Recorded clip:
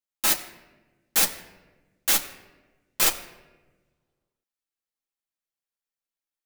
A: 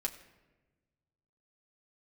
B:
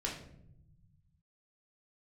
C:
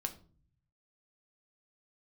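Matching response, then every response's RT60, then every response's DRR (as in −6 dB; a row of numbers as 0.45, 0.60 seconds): A; non-exponential decay, 0.75 s, 0.45 s; −0.5, −3.5, 5.5 decibels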